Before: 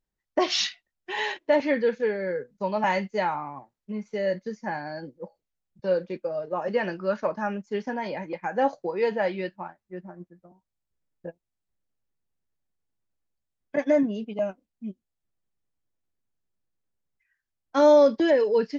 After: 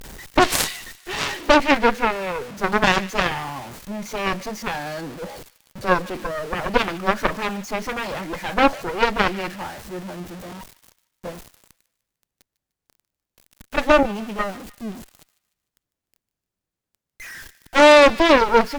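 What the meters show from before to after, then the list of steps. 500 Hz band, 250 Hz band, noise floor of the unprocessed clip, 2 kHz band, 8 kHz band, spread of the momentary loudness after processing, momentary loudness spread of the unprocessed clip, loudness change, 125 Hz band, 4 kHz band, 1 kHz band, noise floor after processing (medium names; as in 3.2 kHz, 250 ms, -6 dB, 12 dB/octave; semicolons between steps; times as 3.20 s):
+3.0 dB, +4.5 dB, -85 dBFS, +11.5 dB, no reading, 20 LU, 19 LU, +6.0 dB, +8.0 dB, +9.0 dB, +9.5 dB, under -85 dBFS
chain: jump at every zero crossing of -34 dBFS; Chebyshev shaper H 4 -7 dB, 7 -11 dB, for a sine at -9.5 dBFS; feedback echo behind a high-pass 150 ms, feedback 44%, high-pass 1.6 kHz, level -18 dB; trim +3.5 dB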